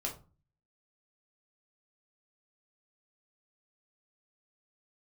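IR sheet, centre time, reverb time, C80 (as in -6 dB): 18 ms, 0.35 s, 16.5 dB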